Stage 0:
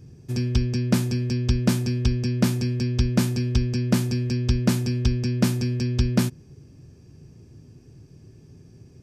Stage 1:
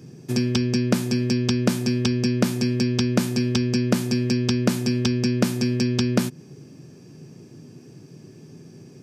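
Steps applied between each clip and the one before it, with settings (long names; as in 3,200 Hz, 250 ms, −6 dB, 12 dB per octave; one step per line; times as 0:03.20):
high-pass filter 150 Hz 24 dB per octave
downward compressor 6 to 1, threshold −25 dBFS, peak gain reduction 10.5 dB
level +8 dB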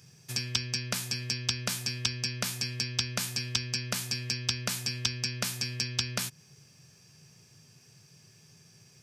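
guitar amp tone stack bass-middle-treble 10-0-10
level +1.5 dB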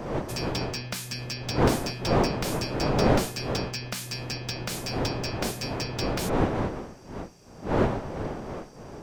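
wind on the microphone 550 Hz −29 dBFS
slew-rate limiting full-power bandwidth 180 Hz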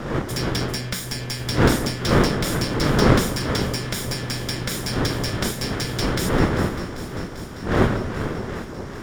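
lower of the sound and its delayed copy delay 0.57 ms
on a send: delay that swaps between a low-pass and a high-pass 197 ms, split 1,100 Hz, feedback 87%, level −12.5 dB
on the sum: level +6.5 dB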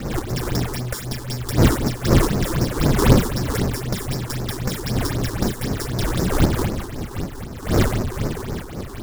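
each half-wave held at its own peak
all-pass phaser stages 6, 3.9 Hz, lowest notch 150–3,300 Hz
level −2.5 dB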